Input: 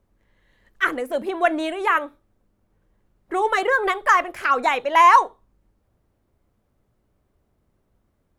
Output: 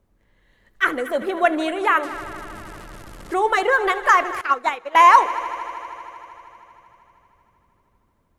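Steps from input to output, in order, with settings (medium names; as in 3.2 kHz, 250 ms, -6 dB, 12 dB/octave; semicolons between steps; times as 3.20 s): 2.03–3.34 s: one-bit delta coder 64 kbps, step -35.5 dBFS; multi-head delay 78 ms, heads all three, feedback 73%, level -21 dB; 4.41–4.95 s: upward expansion 2.5:1, over -27 dBFS; trim +1.5 dB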